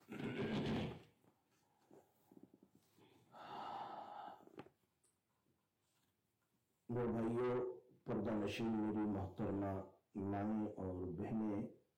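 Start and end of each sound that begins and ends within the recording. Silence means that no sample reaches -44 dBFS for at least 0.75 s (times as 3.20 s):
3.51–4.60 s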